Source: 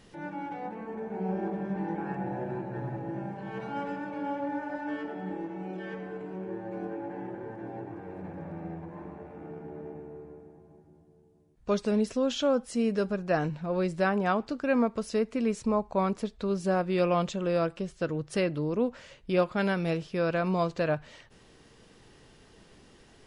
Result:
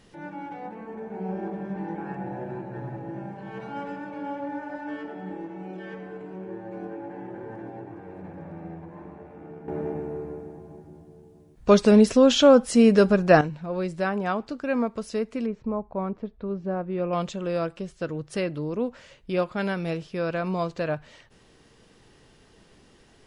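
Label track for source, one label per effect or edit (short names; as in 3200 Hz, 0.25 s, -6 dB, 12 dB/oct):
7.300000	7.700000	fast leveller amount 70%
9.680000	13.410000	gain +11 dB
15.460000	17.130000	tape spacing loss at 10 kHz 44 dB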